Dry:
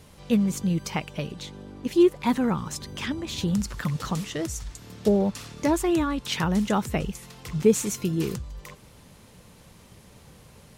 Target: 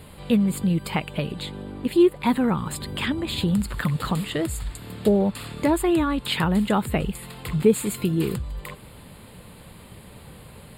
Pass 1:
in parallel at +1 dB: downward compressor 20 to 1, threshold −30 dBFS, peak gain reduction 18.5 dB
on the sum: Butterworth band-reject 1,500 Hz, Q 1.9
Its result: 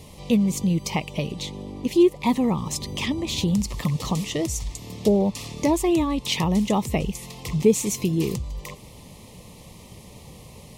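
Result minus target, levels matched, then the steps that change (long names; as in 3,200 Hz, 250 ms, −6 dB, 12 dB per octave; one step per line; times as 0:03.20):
8,000 Hz band +5.0 dB
change: Butterworth band-reject 5,900 Hz, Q 1.9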